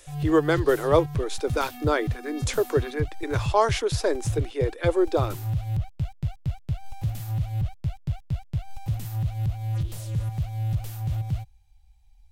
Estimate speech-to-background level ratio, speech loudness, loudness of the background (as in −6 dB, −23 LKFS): 5.5 dB, −25.5 LKFS, −31.0 LKFS